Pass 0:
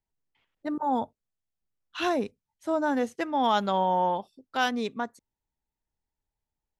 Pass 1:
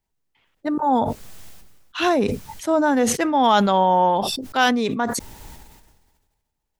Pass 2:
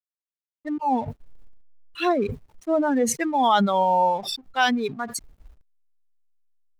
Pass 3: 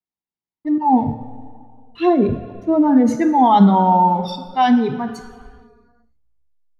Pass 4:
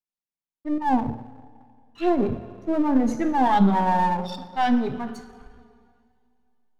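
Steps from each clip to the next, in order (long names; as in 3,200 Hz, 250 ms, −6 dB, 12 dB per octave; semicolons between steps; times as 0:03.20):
level that may fall only so fast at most 39 dB per second; level +7.5 dB
spectral dynamics exaggerated over time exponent 2; slack as between gear wheels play −42 dBFS
convolution reverb RT60 2.1 s, pre-delay 3 ms, DRR 7 dB; level −9.5 dB
gain on one half-wave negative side −7 dB; coupled-rooms reverb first 0.24 s, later 3.2 s, from −18 dB, DRR 17 dB; level −4.5 dB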